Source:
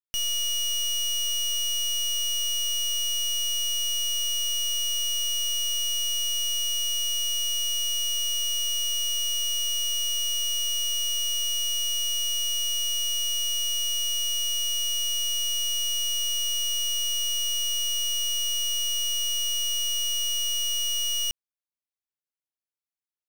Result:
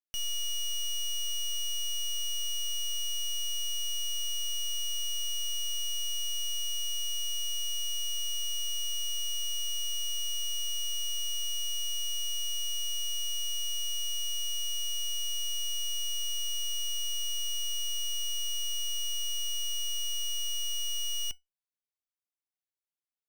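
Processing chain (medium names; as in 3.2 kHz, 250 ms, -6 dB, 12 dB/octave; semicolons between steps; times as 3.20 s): feedback comb 740 Hz, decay 0.17 s, harmonics all, mix 60%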